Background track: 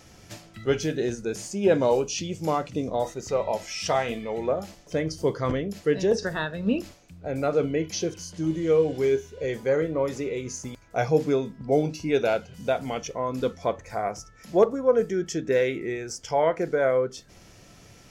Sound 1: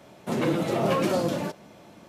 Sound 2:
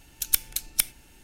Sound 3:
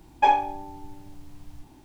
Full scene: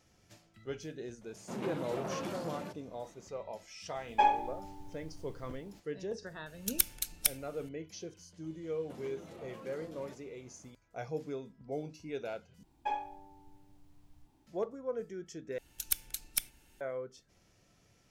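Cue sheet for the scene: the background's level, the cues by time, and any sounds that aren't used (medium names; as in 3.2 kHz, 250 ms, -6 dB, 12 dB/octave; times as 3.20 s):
background track -16.5 dB
1.21 s: add 1 -12 dB + transformer saturation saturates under 850 Hz
3.96 s: add 3 -7 dB
6.46 s: add 2 -6 dB
8.63 s: add 1 -15.5 dB + compression, threshold -31 dBFS
12.63 s: replace with 3 -16.5 dB
15.58 s: replace with 2 -9.5 dB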